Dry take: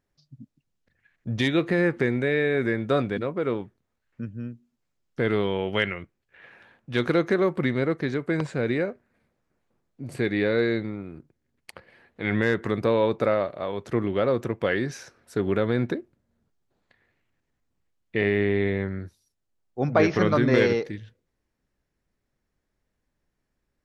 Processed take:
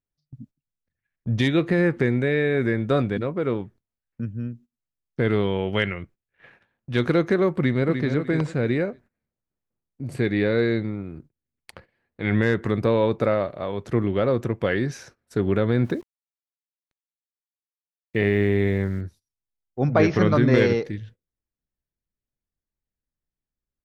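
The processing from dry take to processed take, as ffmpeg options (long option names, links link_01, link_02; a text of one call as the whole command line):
ffmpeg -i in.wav -filter_complex "[0:a]asplit=2[link_01][link_02];[link_02]afade=type=in:start_time=7.51:duration=0.01,afade=type=out:start_time=8.09:duration=0.01,aecho=0:1:300|600|900:0.446684|0.111671|0.0279177[link_03];[link_01][link_03]amix=inputs=2:normalize=0,asettb=1/sr,asplit=3[link_04][link_05][link_06];[link_04]atrim=end=15.834[link_07];[link_05]atrim=start=15.83:end=19.01,asetpts=PTS-STARTPTS,afade=type=in:duration=0.004:curve=qsin,afade=type=out:start_time=3.176:duration=0.004:curve=qsin,aeval=exprs='val(0)*gte(abs(val(0)),0.00422)':channel_layout=same[link_08];[link_06]atrim=start=19.006[link_09];[link_07][link_08]acrossfade=duration=0.004:curve1=hsin:curve2=qsin[link_10];[link_10][link_09]acrossfade=duration=0.004:curve1=qsin:curve2=hsin,agate=range=-18dB:threshold=-50dB:ratio=16:detection=peak,lowshelf=frequency=190:gain=8" out.wav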